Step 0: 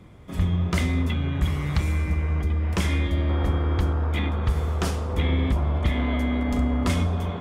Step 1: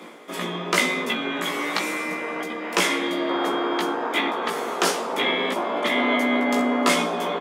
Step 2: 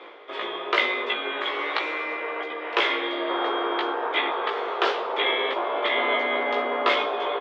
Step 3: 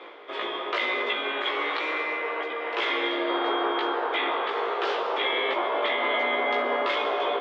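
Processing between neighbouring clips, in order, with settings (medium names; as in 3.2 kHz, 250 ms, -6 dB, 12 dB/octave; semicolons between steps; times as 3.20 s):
Bessel high-pass 410 Hz, order 8; reverse; upward compressor, threshold -42 dBFS; reverse; doubling 17 ms -3 dB; trim +8.5 dB
elliptic band-pass 390–3600 Hz, stop band 60 dB
peak limiter -17 dBFS, peak gain reduction 9 dB; on a send at -8.5 dB: reverberation RT60 1.5 s, pre-delay 120 ms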